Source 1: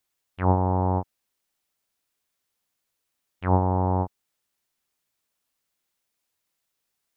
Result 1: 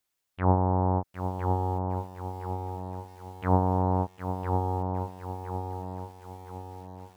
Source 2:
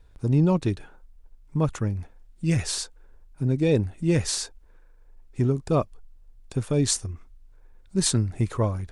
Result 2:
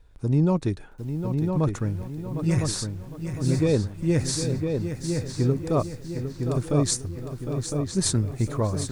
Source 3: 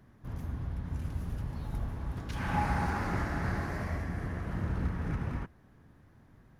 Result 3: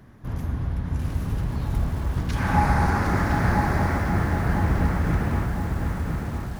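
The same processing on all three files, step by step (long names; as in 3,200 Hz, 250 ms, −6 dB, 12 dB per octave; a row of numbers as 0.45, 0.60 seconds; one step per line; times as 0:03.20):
dynamic equaliser 2,900 Hz, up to −7 dB, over −53 dBFS, Q 2.7
on a send: feedback echo with a low-pass in the loop 1,008 ms, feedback 47%, low-pass 3,000 Hz, level −5 dB
on the sum: feedback echo at a low word length 757 ms, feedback 35%, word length 8 bits, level −9 dB
normalise the peak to −9 dBFS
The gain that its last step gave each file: −2.0, −1.0, +9.5 decibels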